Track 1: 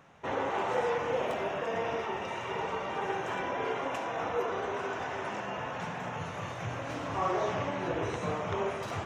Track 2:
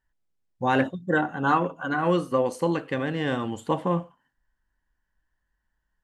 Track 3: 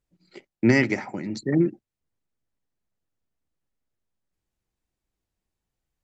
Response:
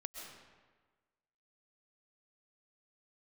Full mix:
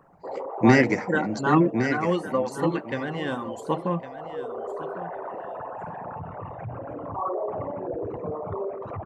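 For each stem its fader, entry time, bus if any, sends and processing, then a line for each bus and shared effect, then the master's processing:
+1.5 dB, 0.00 s, no send, no echo send, spectral envelope exaggerated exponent 3; automatic ducking −8 dB, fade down 1.15 s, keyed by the second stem
−1.0 dB, 0.00 s, no send, echo send −14 dB, reverb reduction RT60 1.3 s
+1.5 dB, 0.00 s, no send, echo send −8 dB, parametric band 3,400 Hz −7 dB 0.77 octaves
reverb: not used
echo: repeating echo 1,109 ms, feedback 18%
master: no processing

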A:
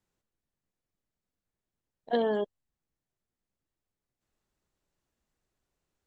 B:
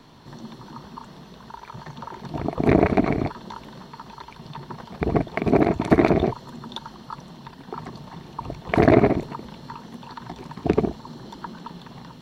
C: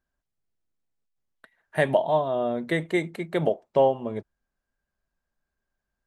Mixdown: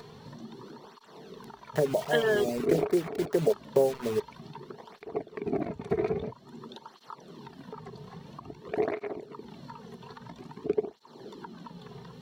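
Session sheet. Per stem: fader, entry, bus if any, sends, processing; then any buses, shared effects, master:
−2.0 dB, 0.00 s, bus A, no send, flat-topped bell 2,000 Hz +16 dB
−13.0 dB, 0.00 s, no bus, no send, upward compression, threshold −21 dBFS; through-zero flanger with one copy inverted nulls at 0.5 Hz, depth 3.7 ms
−1.5 dB, 0.00 s, bus A, no send, treble cut that deepens with the level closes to 550 Hz, closed at −21.5 dBFS; low-pass filter 1,800 Hz 24 dB per octave; bit reduction 6 bits
bus A: 0.0 dB, reverb reduction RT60 0.69 s; downward compressor 1.5 to 1, threshold −28 dBFS, peak gain reduction 3.5 dB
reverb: not used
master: parametric band 420 Hz +11 dB 0.32 octaves

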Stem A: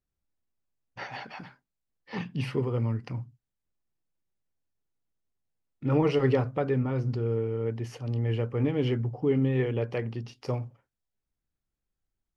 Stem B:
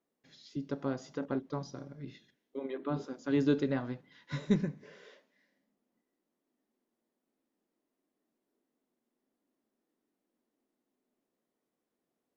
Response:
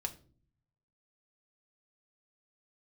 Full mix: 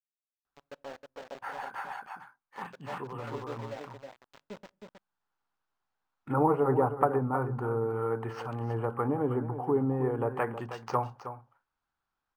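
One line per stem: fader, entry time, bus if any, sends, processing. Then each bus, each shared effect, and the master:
+2.5 dB, 0.45 s, no send, echo send −11.5 dB, treble cut that deepens with the level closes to 680 Hz, closed at −23 dBFS; flat-topped bell 1,100 Hz +13 dB 1.3 octaves; automatic ducking −11 dB, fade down 1.20 s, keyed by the second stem
−14.0 dB, 0.00 s, send −18 dB, echo send −4.5 dB, flat-topped bell 670 Hz +13 dB 1.2 octaves; centre clipping without the shift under −27 dBFS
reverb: on, RT60 0.45 s, pre-delay 4 ms
echo: single-tap delay 316 ms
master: low-shelf EQ 280 Hz −10.5 dB; linearly interpolated sample-rate reduction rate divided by 4×

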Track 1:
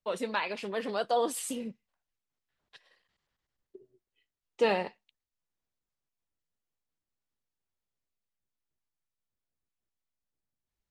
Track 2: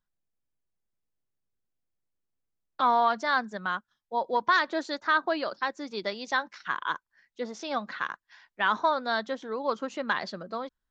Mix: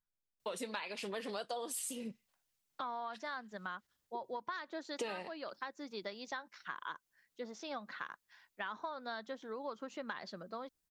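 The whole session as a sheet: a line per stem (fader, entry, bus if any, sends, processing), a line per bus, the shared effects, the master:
+1.5 dB, 0.40 s, no send, high-pass filter 52 Hz; high-shelf EQ 3,300 Hz +10 dB
−8.5 dB, 0.00 s, no send, no processing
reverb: not used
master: downward compressor 8 to 1, threshold −38 dBFS, peak gain reduction 18.5 dB

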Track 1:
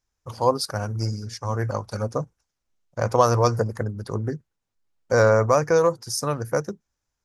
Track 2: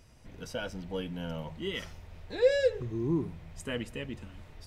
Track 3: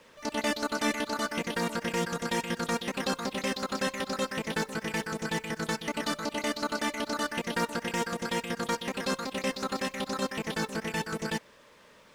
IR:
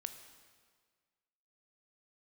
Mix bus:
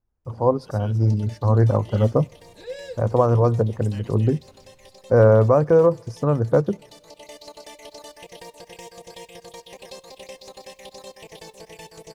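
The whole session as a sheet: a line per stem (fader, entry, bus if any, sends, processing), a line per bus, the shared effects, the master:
−4.5 dB, 0.00 s, send −18 dB, low-pass filter 2,000 Hz 6 dB per octave; tilt shelving filter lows +9 dB, about 1,200 Hz; automatic gain control
−10.5 dB, 0.25 s, muted 0:01.05–0:01.68, no send, high-shelf EQ 4,100 Hz +10 dB
−3.0 dB, 0.85 s, send −14 dB, downward compressor, threshold −31 dBFS, peak gain reduction 8 dB; phaser with its sweep stopped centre 580 Hz, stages 4; automatic ducking −10 dB, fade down 1.40 s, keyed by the first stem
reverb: on, RT60 1.7 s, pre-delay 15 ms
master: no processing

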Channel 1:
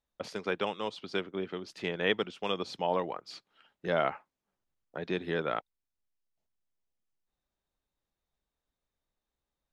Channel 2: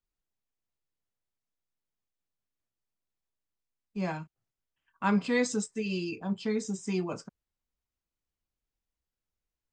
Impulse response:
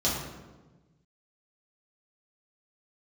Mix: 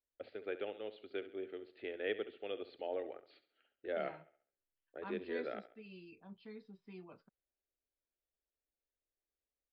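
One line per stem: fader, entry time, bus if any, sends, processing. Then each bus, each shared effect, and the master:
−5.5 dB, 0.00 s, no send, echo send −14 dB, low-pass filter 2,200 Hz 12 dB per octave; phaser with its sweep stopped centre 420 Hz, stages 4
−19.0 dB, 0.00 s, no send, no echo send, no processing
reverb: not used
echo: repeating echo 68 ms, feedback 41%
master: elliptic low-pass filter 4,300 Hz, stop band 40 dB; low-shelf EQ 120 Hz −6.5 dB

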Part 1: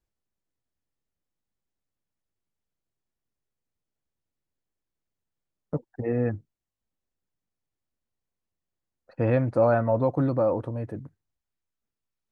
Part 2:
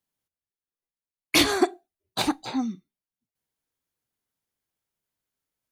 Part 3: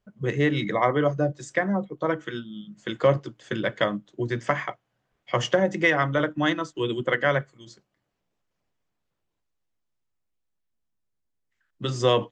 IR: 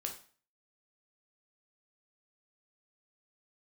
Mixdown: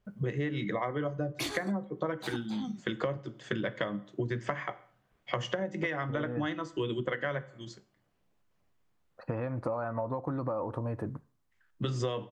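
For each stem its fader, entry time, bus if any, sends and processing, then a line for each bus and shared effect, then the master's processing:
0.0 dB, 0.10 s, send −12.5 dB, parametric band 1,100 Hz +9.5 dB 0.8 octaves; downward compressor 2.5 to 1, threshold −28 dBFS, peak gain reduction 9.5 dB
−1.0 dB, 0.05 s, send −23 dB, automatic ducking −13 dB, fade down 1.75 s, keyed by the third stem
−0.5 dB, 0.00 s, send −8 dB, bass and treble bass +3 dB, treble −5 dB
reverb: on, RT60 0.40 s, pre-delay 8 ms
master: downward compressor 12 to 1, threshold −29 dBFS, peak gain reduction 17.5 dB

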